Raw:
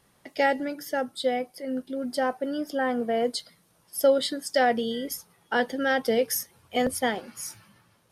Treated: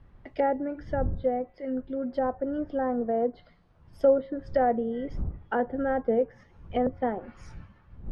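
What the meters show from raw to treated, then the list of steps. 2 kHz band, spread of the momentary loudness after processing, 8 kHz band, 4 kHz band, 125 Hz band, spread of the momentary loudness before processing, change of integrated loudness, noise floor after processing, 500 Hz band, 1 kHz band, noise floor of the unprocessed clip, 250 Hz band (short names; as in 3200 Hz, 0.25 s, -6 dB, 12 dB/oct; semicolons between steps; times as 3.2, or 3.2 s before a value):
-11.0 dB, 10 LU, under -30 dB, under -20 dB, n/a, 11 LU, -1.5 dB, -59 dBFS, -0.5 dB, -2.0 dB, -65 dBFS, -0.5 dB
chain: wind noise 84 Hz -40 dBFS; LPF 2000 Hz 12 dB/oct; resonator 180 Hz, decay 0.97 s, mix 30%; treble ducked by the level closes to 1000 Hz, closed at -27 dBFS; gain +2.5 dB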